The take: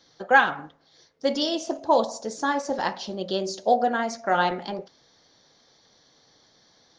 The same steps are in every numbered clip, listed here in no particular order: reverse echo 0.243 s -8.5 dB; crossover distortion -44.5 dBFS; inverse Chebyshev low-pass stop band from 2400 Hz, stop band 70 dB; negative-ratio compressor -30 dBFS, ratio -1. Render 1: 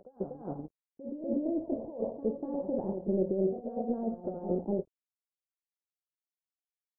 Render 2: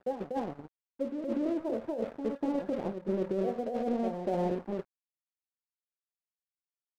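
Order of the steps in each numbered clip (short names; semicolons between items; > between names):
crossover distortion > negative-ratio compressor > inverse Chebyshev low-pass > reverse echo; inverse Chebyshev low-pass > crossover distortion > reverse echo > negative-ratio compressor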